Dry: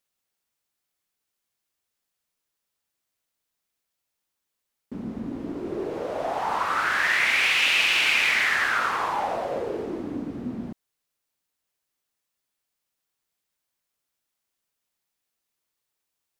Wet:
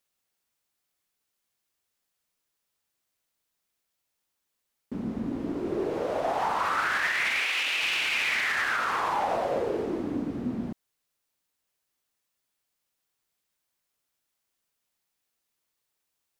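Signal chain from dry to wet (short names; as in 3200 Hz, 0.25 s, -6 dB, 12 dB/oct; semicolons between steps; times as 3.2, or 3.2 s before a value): limiter -19.5 dBFS, peak gain reduction 11 dB; 7.39–7.83 elliptic high-pass 250 Hz; gain +1 dB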